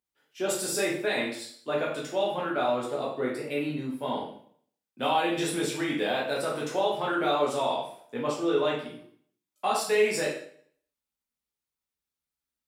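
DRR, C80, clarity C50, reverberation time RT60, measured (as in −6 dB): −4.5 dB, 8.5 dB, 4.0 dB, 0.55 s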